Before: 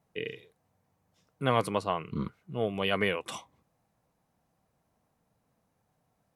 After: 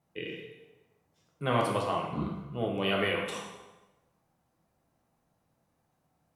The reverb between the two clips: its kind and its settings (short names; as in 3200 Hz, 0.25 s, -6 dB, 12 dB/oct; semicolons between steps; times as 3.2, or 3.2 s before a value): plate-style reverb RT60 1.1 s, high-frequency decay 0.8×, DRR -1.5 dB; gain -3.5 dB